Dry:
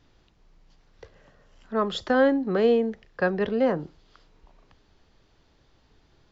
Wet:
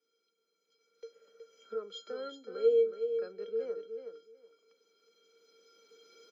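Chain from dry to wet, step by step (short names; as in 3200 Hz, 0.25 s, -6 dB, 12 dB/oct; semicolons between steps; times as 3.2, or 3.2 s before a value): recorder AGC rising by 8.7 dB/s; elliptic high-pass 190 Hz; high shelf 3800 Hz +8.5 dB; resonator 460 Hz, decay 0.17 s, harmonics odd, mix 100%; feedback echo 0.37 s, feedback 17%, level -8 dB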